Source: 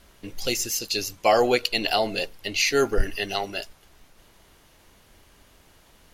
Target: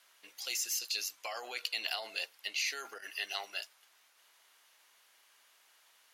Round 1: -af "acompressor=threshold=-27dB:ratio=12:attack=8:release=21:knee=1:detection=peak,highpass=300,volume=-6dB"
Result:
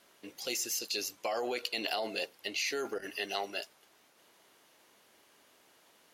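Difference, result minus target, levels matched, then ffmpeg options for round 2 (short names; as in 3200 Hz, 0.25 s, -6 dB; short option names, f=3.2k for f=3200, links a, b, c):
250 Hz band +17.5 dB
-af "acompressor=threshold=-27dB:ratio=12:attack=8:release=21:knee=1:detection=peak,highpass=1.1k,volume=-6dB"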